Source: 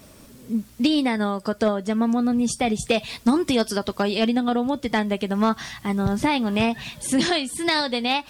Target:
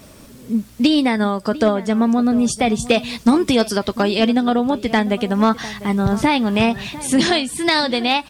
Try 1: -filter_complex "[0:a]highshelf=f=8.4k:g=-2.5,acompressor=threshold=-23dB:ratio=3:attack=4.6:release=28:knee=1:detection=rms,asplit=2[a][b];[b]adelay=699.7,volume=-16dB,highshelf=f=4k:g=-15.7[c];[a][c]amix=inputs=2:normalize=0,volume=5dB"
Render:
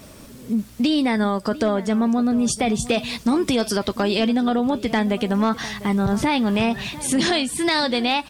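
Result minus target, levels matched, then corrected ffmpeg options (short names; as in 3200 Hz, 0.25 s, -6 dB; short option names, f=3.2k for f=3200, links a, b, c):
compressor: peak gain reduction +7 dB
-filter_complex "[0:a]highshelf=f=8.4k:g=-2.5,asplit=2[a][b];[b]adelay=699.7,volume=-16dB,highshelf=f=4k:g=-15.7[c];[a][c]amix=inputs=2:normalize=0,volume=5dB"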